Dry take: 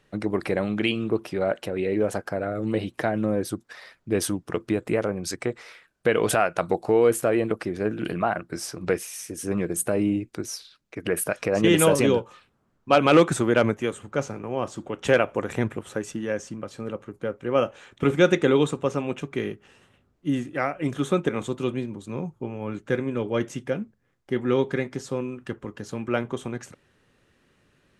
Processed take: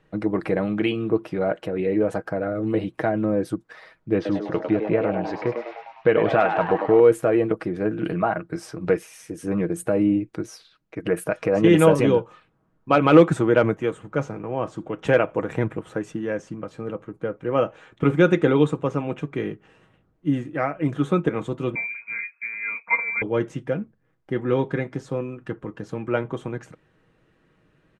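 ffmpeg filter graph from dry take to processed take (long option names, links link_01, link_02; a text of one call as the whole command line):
ffmpeg -i in.wav -filter_complex "[0:a]asettb=1/sr,asplit=3[link_01][link_02][link_03];[link_01]atrim=end=4.154[link_04];[link_02]atrim=start=4.15:end=7,asetpts=PTS-STARTPTS,afade=type=in:duration=0.004:curve=qsin,afade=type=out:start_time=2.846:duration=0.004:curve=qsin,lowpass=frequency=4200:width=0.5412,lowpass=frequency=4200:width=1.3066,asplit=9[link_05][link_06][link_07][link_08][link_09][link_10][link_11][link_12][link_13];[link_06]adelay=101,afreqshift=110,volume=-6.5dB[link_14];[link_07]adelay=202,afreqshift=220,volume=-10.8dB[link_15];[link_08]adelay=303,afreqshift=330,volume=-15.1dB[link_16];[link_09]adelay=404,afreqshift=440,volume=-19.4dB[link_17];[link_10]adelay=505,afreqshift=550,volume=-23.7dB[link_18];[link_11]adelay=606,afreqshift=660,volume=-28dB[link_19];[link_12]adelay=707,afreqshift=770,volume=-32.3dB[link_20];[link_13]adelay=808,afreqshift=880,volume=-36.6dB[link_21];[link_05][link_14][link_15][link_16][link_17][link_18][link_19][link_20][link_21]amix=inputs=9:normalize=0,atrim=end_sample=125685[link_22];[link_03]atrim=start=6.996[link_23];[link_04][link_22]acrossfade=duration=0.004:curve1=hsin:curve2=qsin[link_24];[link_24][link_23]acrossfade=duration=0.004:curve1=qsin:curve2=hsin,asettb=1/sr,asplit=3[link_25][link_26][link_27];[link_25]atrim=end=21.754[link_28];[link_26]atrim=start=21.75:end=23.22,asetpts=PTS-STARTPTS,afade=type=in:duration=0.004:curve=qsin,afade=type=out:start_time=1.466:duration=0.004:curve=qsin,lowpass=frequency=2200:width_type=q:width=0.5098,lowpass=frequency=2200:width_type=q:width=0.6013,lowpass=frequency=2200:width_type=q:width=0.9,lowpass=frequency=2200:width_type=q:width=2.563,afreqshift=-2600,lowshelf=frequency=91:gain=-11.5,aecho=1:1:4.3:0.91,atrim=end_sample=64827[link_29];[link_27]atrim=start=23.216[link_30];[link_28][link_29]acrossfade=duration=0.004:curve1=hsin:curve2=qsin[link_31];[link_31][link_30]acrossfade=duration=0.004:curve1=qsin:curve2=hsin,lowpass=8200,equalizer=frequency=6000:width_type=o:width=2.3:gain=-11,aecho=1:1:6.3:0.43,volume=2dB" out.wav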